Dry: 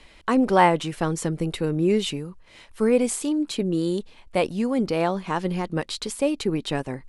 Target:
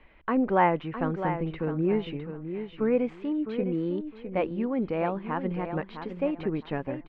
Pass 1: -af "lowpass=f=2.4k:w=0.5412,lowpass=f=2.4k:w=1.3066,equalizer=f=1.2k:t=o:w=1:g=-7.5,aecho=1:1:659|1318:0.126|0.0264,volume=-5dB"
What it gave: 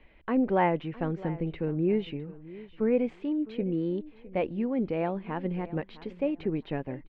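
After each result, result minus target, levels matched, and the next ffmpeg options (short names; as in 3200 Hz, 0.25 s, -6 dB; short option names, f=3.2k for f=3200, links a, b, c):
echo-to-direct -9 dB; 1000 Hz band -3.5 dB
-af "lowpass=f=2.4k:w=0.5412,lowpass=f=2.4k:w=1.3066,equalizer=f=1.2k:t=o:w=1:g=-7.5,aecho=1:1:659|1318|1977:0.355|0.0745|0.0156,volume=-5dB"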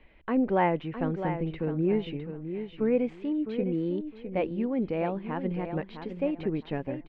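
1000 Hz band -3.0 dB
-af "lowpass=f=2.4k:w=0.5412,lowpass=f=2.4k:w=1.3066,aecho=1:1:659|1318|1977:0.355|0.0745|0.0156,volume=-5dB"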